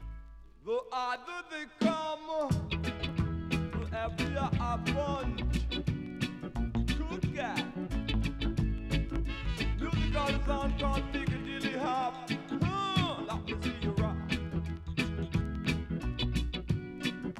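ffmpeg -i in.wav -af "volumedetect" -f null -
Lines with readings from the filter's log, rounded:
mean_volume: -33.0 dB
max_volume: -15.2 dB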